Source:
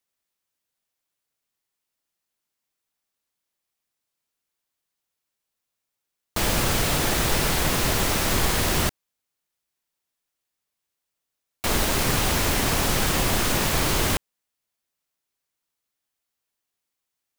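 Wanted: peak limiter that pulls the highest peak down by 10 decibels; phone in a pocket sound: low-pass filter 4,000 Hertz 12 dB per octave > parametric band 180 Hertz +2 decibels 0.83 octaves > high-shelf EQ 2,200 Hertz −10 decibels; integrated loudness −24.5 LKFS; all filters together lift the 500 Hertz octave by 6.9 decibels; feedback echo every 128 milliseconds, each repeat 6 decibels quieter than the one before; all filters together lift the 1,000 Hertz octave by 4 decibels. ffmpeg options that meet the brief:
ffmpeg -i in.wav -af "equalizer=frequency=500:width_type=o:gain=8,equalizer=frequency=1000:width_type=o:gain=4.5,alimiter=limit=-17dB:level=0:latency=1,lowpass=4000,equalizer=frequency=180:width_type=o:width=0.83:gain=2,highshelf=frequency=2200:gain=-10,aecho=1:1:128|256|384|512|640|768:0.501|0.251|0.125|0.0626|0.0313|0.0157,volume=3.5dB" out.wav

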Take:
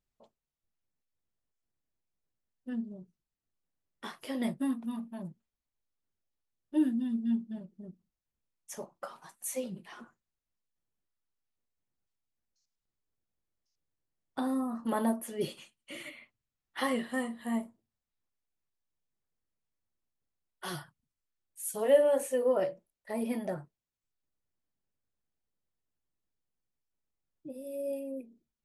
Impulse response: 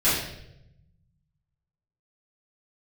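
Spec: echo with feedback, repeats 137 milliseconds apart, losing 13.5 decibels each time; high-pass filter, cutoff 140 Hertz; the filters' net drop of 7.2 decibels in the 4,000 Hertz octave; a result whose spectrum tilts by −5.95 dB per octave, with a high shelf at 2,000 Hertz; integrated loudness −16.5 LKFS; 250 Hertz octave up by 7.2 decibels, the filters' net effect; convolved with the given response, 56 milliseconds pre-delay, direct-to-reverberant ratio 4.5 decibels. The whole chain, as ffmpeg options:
-filter_complex "[0:a]highpass=140,equalizer=frequency=250:width_type=o:gain=8.5,highshelf=frequency=2000:gain=-6.5,equalizer=frequency=4000:width_type=o:gain=-3.5,aecho=1:1:137|274:0.211|0.0444,asplit=2[link_01][link_02];[1:a]atrim=start_sample=2205,adelay=56[link_03];[link_02][link_03]afir=irnorm=-1:irlink=0,volume=-20dB[link_04];[link_01][link_04]amix=inputs=2:normalize=0,volume=10.5dB"

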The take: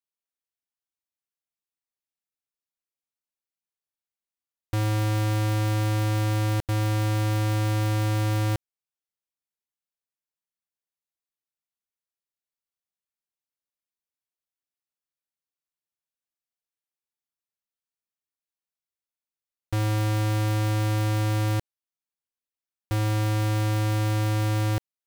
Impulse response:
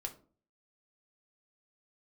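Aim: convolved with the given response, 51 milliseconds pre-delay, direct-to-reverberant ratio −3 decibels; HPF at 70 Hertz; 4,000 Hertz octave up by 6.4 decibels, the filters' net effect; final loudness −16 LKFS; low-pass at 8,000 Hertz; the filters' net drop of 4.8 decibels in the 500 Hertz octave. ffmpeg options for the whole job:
-filter_complex "[0:a]highpass=70,lowpass=8000,equalizer=frequency=500:width_type=o:gain=-6,equalizer=frequency=4000:width_type=o:gain=8.5,asplit=2[link_01][link_02];[1:a]atrim=start_sample=2205,adelay=51[link_03];[link_02][link_03]afir=irnorm=-1:irlink=0,volume=4.5dB[link_04];[link_01][link_04]amix=inputs=2:normalize=0,volume=6.5dB"

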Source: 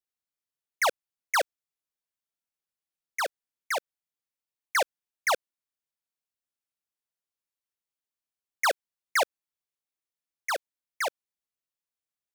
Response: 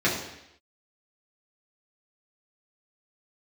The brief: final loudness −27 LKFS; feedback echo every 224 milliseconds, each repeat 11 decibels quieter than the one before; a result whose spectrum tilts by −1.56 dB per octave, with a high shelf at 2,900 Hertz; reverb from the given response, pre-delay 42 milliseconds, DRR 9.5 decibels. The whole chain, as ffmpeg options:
-filter_complex "[0:a]highshelf=frequency=2900:gain=7,aecho=1:1:224|448|672:0.282|0.0789|0.0221,asplit=2[link_01][link_02];[1:a]atrim=start_sample=2205,adelay=42[link_03];[link_02][link_03]afir=irnorm=-1:irlink=0,volume=-24.5dB[link_04];[link_01][link_04]amix=inputs=2:normalize=0,volume=1dB"

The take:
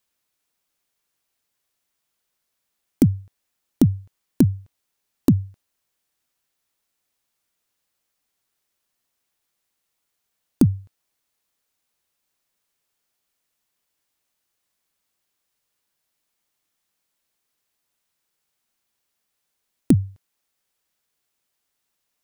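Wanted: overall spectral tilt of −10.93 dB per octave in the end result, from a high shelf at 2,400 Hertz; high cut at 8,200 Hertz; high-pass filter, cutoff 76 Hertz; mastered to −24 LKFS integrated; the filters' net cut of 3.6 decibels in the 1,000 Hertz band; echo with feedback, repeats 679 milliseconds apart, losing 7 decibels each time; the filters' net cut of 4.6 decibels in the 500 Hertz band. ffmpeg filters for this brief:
ffmpeg -i in.wav -af "highpass=76,lowpass=8200,equalizer=frequency=500:width_type=o:gain=-7.5,equalizer=frequency=1000:width_type=o:gain=-3.5,highshelf=frequency=2400:gain=8.5,aecho=1:1:679|1358|2037|2716|3395:0.447|0.201|0.0905|0.0407|0.0183,volume=1.5dB" out.wav

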